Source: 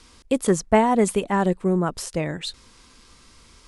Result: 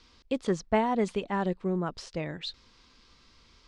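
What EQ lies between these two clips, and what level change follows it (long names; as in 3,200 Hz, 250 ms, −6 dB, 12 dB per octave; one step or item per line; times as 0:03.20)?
transistor ladder low-pass 5,800 Hz, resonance 30%
−1.5 dB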